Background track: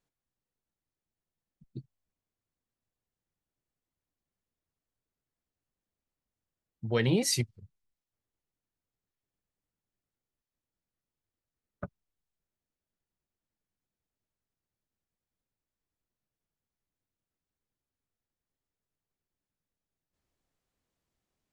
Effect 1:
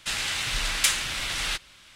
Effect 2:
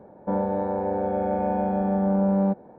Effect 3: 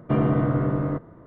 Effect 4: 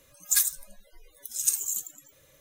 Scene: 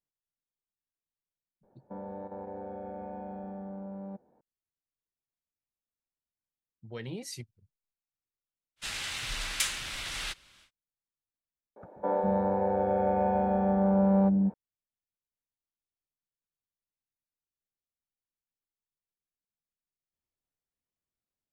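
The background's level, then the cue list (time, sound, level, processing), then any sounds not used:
background track -13 dB
1.63 add 2 -13.5 dB + level quantiser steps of 9 dB
8.76 add 1 -7.5 dB, fades 0.10 s
11.76 add 2 -1 dB + bands offset in time highs, lows 0.2 s, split 290 Hz
not used: 3, 4

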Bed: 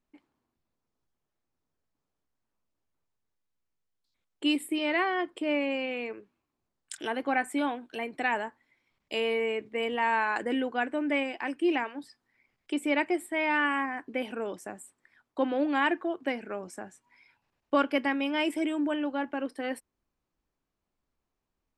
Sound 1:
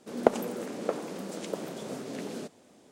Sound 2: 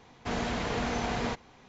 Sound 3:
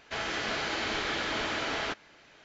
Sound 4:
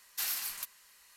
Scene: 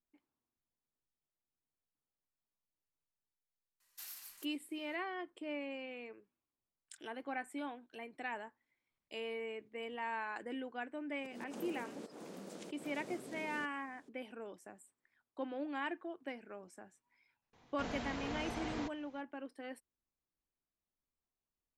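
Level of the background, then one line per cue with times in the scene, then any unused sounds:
bed -13.5 dB
3.8 add 4 -17.5 dB + high shelf 5600 Hz +3.5 dB
11.18 add 1 -11 dB + auto swell 0.152 s
17.53 add 2 -11 dB
not used: 3

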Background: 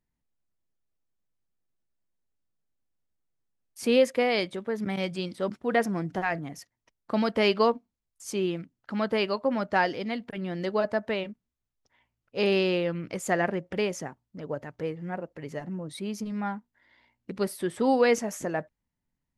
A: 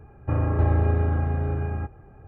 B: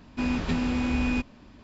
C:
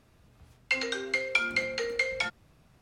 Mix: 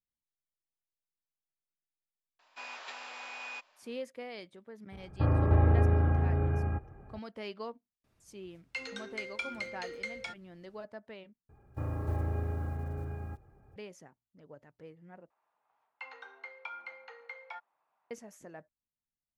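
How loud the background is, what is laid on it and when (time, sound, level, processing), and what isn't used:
background -18.5 dB
2.39 add B -7.5 dB + HPF 670 Hz 24 dB/oct
4.92 add A -3 dB
8.04 add C -11 dB
11.49 replace with A -12 dB + block floating point 7-bit
15.3 replace with C -1 dB + ladder band-pass 1000 Hz, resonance 60%

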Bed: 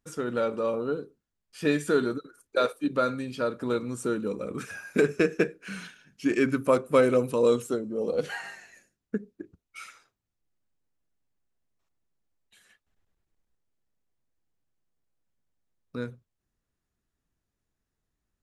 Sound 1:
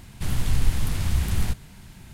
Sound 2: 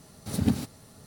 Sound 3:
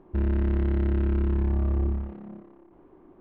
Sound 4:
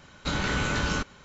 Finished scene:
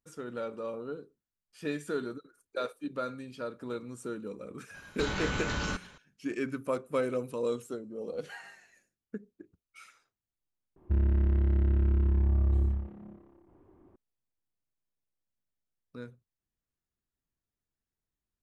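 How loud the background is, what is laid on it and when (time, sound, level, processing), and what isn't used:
bed -9.5 dB
4.74 add 4 -3.5 dB + limiter -19.5 dBFS
10.76 add 3 -7.5 dB + bell 88 Hz +13 dB
not used: 1, 2

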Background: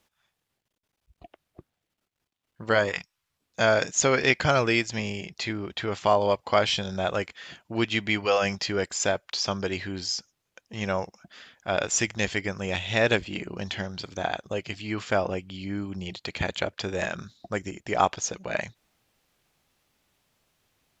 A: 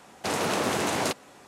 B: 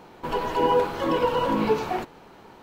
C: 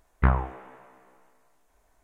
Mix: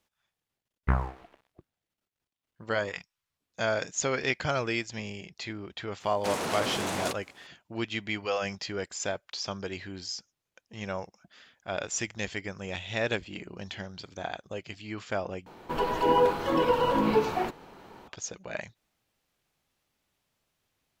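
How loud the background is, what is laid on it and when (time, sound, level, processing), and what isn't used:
background -7 dB
0.65 add C -4.5 dB + crossover distortion -46 dBFS
6 add A -10.5 dB + sample leveller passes 2
15.46 replace with B -1.5 dB

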